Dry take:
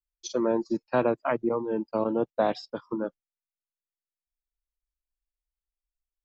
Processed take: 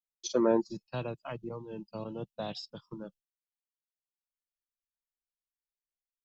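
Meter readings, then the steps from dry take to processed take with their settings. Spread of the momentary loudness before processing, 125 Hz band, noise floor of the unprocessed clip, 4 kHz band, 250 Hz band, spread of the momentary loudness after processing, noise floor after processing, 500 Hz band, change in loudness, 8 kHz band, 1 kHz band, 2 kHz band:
8 LU, −0.5 dB, below −85 dBFS, 0.0 dB, −5.5 dB, 18 LU, below −85 dBFS, −7.0 dB, −5.5 dB, can't be measured, −10.0 dB, −10.0 dB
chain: gain on a spectral selection 0:00.61–0:03.32, 210–2,500 Hz −14 dB
noise gate with hold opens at −55 dBFS

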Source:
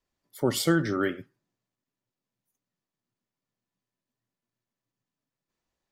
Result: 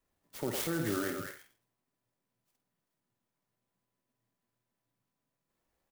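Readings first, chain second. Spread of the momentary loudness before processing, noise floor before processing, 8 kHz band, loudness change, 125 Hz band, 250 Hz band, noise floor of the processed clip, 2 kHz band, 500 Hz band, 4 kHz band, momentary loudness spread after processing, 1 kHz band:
7 LU, below −85 dBFS, −5.0 dB, −8.5 dB, −9.0 dB, −9.0 dB, below −85 dBFS, −8.0 dB, −8.5 dB, −9.0 dB, 17 LU, −7.5 dB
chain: downward compressor, threshold −30 dBFS, peak gain reduction 12 dB
brickwall limiter −26.5 dBFS, peak gain reduction 7 dB
double-tracking delay 50 ms −8.5 dB
echo through a band-pass that steps 107 ms, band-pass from 630 Hz, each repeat 1.4 octaves, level −0.5 dB
converter with an unsteady clock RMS 0.062 ms
level +2 dB

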